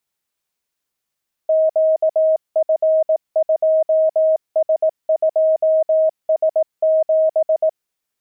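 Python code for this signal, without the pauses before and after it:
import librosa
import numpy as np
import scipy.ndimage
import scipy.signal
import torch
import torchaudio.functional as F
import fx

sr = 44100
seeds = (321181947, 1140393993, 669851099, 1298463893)

y = fx.morse(sr, text='QF2S2S7', wpm=18, hz=633.0, level_db=-11.5)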